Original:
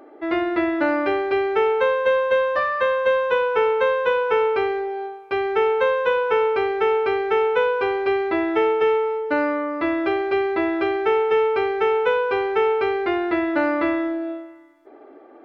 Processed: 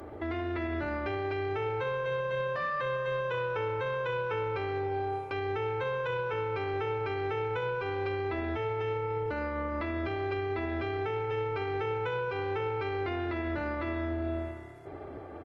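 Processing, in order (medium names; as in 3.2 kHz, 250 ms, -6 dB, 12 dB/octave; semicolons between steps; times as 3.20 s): octave divider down 2 oct, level +3 dB; treble shelf 4 kHz +7 dB; delay 135 ms -19.5 dB; compression 4:1, threshold -26 dBFS, peak gain reduction 10.5 dB; bass shelf 180 Hz -4.5 dB; peak limiter -27.5 dBFS, peak gain reduction 11 dB; on a send: frequency-shifting echo 377 ms, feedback 50%, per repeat +34 Hz, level -20 dB; on the sum: trim +2 dB; Opus 24 kbps 48 kHz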